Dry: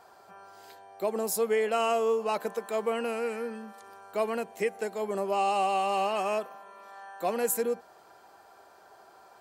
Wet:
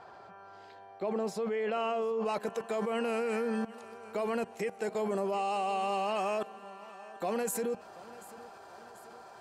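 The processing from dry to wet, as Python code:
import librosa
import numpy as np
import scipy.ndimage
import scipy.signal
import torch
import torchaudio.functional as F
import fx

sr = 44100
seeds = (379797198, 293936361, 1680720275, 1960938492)

y = fx.peak_eq(x, sr, hz=120.0, db=5.5, octaves=1.4)
y = fx.level_steps(y, sr, step_db=20)
y = fx.lowpass(y, sr, hz=fx.steps((0.0, 3600.0), (2.25, 9700.0)), slope=12)
y = fx.echo_feedback(y, sr, ms=738, feedback_pct=52, wet_db=-19.0)
y = F.gain(torch.from_numpy(y), 8.5).numpy()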